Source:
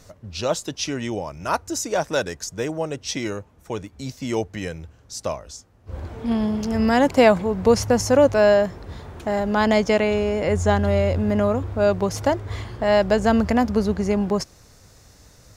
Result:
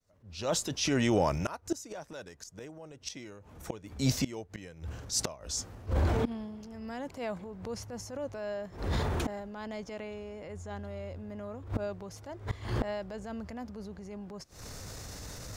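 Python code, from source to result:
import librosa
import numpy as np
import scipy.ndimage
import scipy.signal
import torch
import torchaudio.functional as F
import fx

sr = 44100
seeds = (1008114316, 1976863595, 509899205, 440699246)

y = fx.fade_in_head(x, sr, length_s=2.0)
y = fx.gate_flip(y, sr, shuts_db=-20.0, range_db=-28)
y = fx.transient(y, sr, attack_db=-7, sustain_db=4)
y = y * 10.0 ** (7.0 / 20.0)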